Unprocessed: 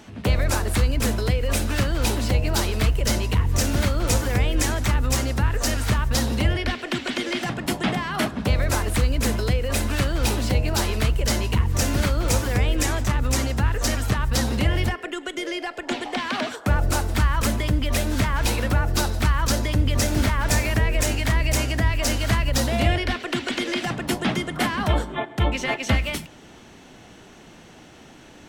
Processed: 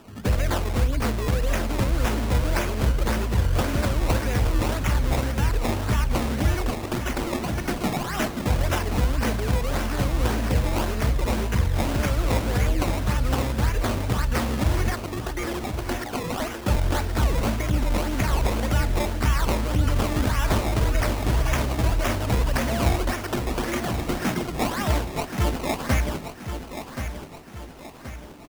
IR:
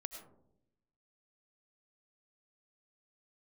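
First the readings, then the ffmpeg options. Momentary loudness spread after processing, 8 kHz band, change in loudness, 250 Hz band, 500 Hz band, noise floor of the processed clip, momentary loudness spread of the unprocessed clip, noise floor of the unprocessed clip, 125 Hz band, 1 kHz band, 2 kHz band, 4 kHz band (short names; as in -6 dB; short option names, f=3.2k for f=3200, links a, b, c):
6 LU, -7.0 dB, -2.0 dB, -1.0 dB, -0.5 dB, -38 dBFS, 5 LU, -47 dBFS, -1.5 dB, 0.0 dB, -3.5 dB, -5.5 dB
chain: -filter_complex "[0:a]acrusher=samples=20:mix=1:aa=0.000001:lfo=1:lforange=20:lforate=1.8,asplit=2[a][b];[b]aecho=0:1:1077|2154|3231|4308|5385:0.355|0.16|0.0718|0.0323|0.0145[c];[a][c]amix=inputs=2:normalize=0,volume=-2dB"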